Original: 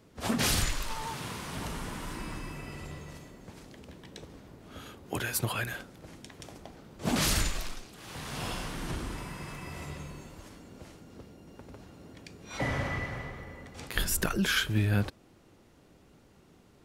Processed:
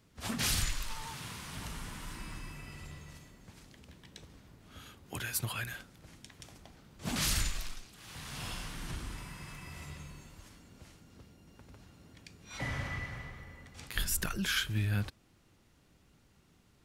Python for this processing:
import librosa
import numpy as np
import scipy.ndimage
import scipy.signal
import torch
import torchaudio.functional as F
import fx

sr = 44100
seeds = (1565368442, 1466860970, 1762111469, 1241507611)

y = fx.peak_eq(x, sr, hz=460.0, db=-9.0, octaves=2.4)
y = F.gain(torch.from_numpy(y), -2.5).numpy()